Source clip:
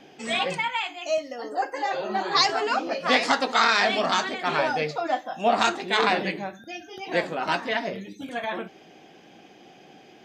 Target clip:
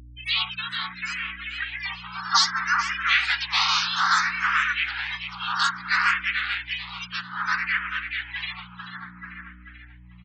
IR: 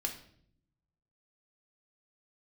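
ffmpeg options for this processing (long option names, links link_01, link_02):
-filter_complex "[0:a]lowpass=8500,afftfilt=real='re*(1-between(b*sr/4096,110,1100))':imag='im*(1-between(b*sr/4096,110,1100))':win_size=4096:overlap=0.75,bandreject=frequency=356.3:width_type=h:width=4,bandreject=frequency=712.6:width_type=h:width=4,bandreject=frequency=1068.9:width_type=h:width=4,bandreject=frequency=1425.2:width_type=h:width=4,bandreject=frequency=1781.5:width_type=h:width=4,bandreject=frequency=2137.8:width_type=h:width=4,bandreject=frequency=2494.1:width_type=h:width=4,bandreject=frequency=2850.4:width_type=h:width=4,bandreject=frequency=3206.7:width_type=h:width=4,bandreject=frequency=3563:width_type=h:width=4,bandreject=frequency=3919.3:width_type=h:width=4,afftfilt=real='re*gte(hypot(re,im),0.0316)':imag='im*gte(hypot(re,im),0.0316)':win_size=1024:overlap=0.75,equalizer=frequency=120:width=0.32:gain=2.5,asplit=2[link_01][link_02];[link_02]acompressor=threshold=-33dB:ratio=8,volume=2dB[link_03];[link_01][link_03]amix=inputs=2:normalize=0,asplit=4[link_04][link_05][link_06][link_07];[link_05]asetrate=29433,aresample=44100,atempo=1.49831,volume=-16dB[link_08];[link_06]asetrate=35002,aresample=44100,atempo=1.25992,volume=-8dB[link_09];[link_07]asetrate=52444,aresample=44100,atempo=0.840896,volume=-2dB[link_10];[link_04][link_08][link_09][link_10]amix=inputs=4:normalize=0,aeval=exprs='val(0)+0.00794*(sin(2*PI*60*n/s)+sin(2*PI*2*60*n/s)/2+sin(2*PI*3*60*n/s)/3+sin(2*PI*4*60*n/s)/4+sin(2*PI*5*60*n/s)/5)':channel_layout=same,asplit=2[link_11][link_12];[link_12]adelay=439,lowpass=frequency=3400:poles=1,volume=-4dB,asplit=2[link_13][link_14];[link_14]adelay=439,lowpass=frequency=3400:poles=1,volume=0.53,asplit=2[link_15][link_16];[link_16]adelay=439,lowpass=frequency=3400:poles=1,volume=0.53,asplit=2[link_17][link_18];[link_18]adelay=439,lowpass=frequency=3400:poles=1,volume=0.53,asplit=2[link_19][link_20];[link_20]adelay=439,lowpass=frequency=3400:poles=1,volume=0.53,asplit=2[link_21][link_22];[link_22]adelay=439,lowpass=frequency=3400:poles=1,volume=0.53,asplit=2[link_23][link_24];[link_24]adelay=439,lowpass=frequency=3400:poles=1,volume=0.53[link_25];[link_13][link_15][link_17][link_19][link_21][link_23][link_25]amix=inputs=7:normalize=0[link_26];[link_11][link_26]amix=inputs=2:normalize=0,asplit=2[link_27][link_28];[link_28]afreqshift=0.61[link_29];[link_27][link_29]amix=inputs=2:normalize=1"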